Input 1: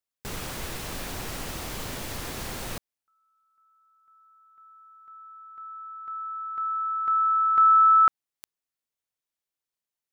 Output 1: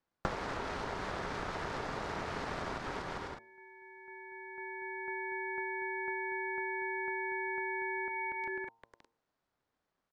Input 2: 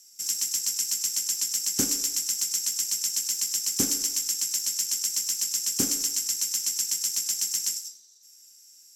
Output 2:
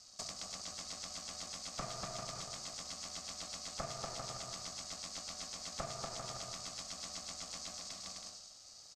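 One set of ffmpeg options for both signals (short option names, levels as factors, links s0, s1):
-filter_complex "[0:a]equalizer=f=2200:t=o:w=1.5:g=-14.5,acrossover=split=210|930|2300[s0][s1][s2][s3];[s0]acompressor=threshold=0.00224:ratio=4[s4];[s1]acompressor=threshold=0.00447:ratio=4[s5];[s2]acompressor=threshold=0.0224:ratio=4[s6];[s3]acompressor=threshold=0.0282:ratio=4[s7];[s4][s5][s6][s7]amix=inputs=4:normalize=0,aemphasis=mode=reproduction:type=75fm,aeval=exprs='val(0)*sin(2*PI*260*n/s)':c=same,asplit=2[s8][s9];[s9]aecho=0:1:240|396|497.4|563.3|606.2:0.631|0.398|0.251|0.158|0.1[s10];[s8][s10]amix=inputs=2:normalize=0,aeval=exprs='val(0)*sin(2*PI*670*n/s)':c=same,asplit=2[s11][s12];[s12]alimiter=level_in=4.22:limit=0.0631:level=0:latency=1,volume=0.237,volume=1.26[s13];[s11][s13]amix=inputs=2:normalize=0,acompressor=threshold=0.00355:ratio=10:attack=25:release=440:detection=peak,lowpass=4000,bandreject=f=114.6:t=h:w=4,bandreject=f=229.2:t=h:w=4,bandreject=f=343.8:t=h:w=4,bandreject=f=458.4:t=h:w=4,bandreject=f=573:t=h:w=4,bandreject=f=687.6:t=h:w=4,bandreject=f=802.2:t=h:w=4,bandreject=f=916.8:t=h:w=4,bandreject=f=1031.4:t=h:w=4,volume=5.31"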